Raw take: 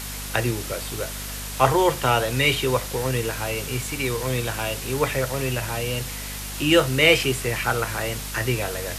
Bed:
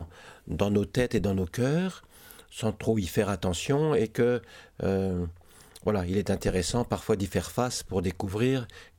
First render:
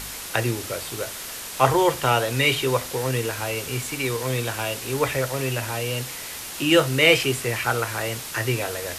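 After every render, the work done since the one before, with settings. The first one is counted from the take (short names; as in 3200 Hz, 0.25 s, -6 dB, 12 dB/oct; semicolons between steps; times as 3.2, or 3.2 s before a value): de-hum 50 Hz, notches 5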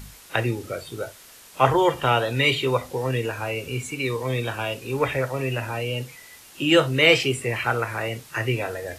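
noise print and reduce 13 dB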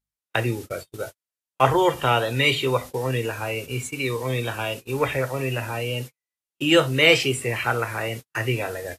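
gate -33 dBFS, range -49 dB; high shelf 6900 Hz +5 dB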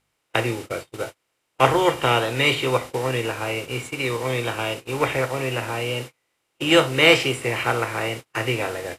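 per-bin compression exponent 0.6; upward expander 1.5:1, over -36 dBFS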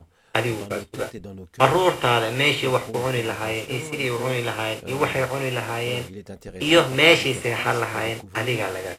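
add bed -11 dB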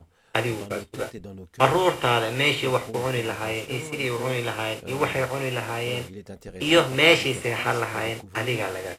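gain -2 dB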